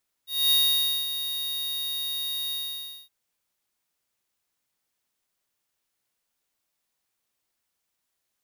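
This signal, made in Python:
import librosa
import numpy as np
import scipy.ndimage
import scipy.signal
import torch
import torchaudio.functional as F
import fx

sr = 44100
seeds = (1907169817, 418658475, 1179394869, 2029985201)

y = fx.adsr_tone(sr, wave='square', hz=3750.0, attack_ms=241.0, decay_ms=549.0, sustain_db=-10.5, held_s=2.25, release_ms=567.0, level_db=-20.0)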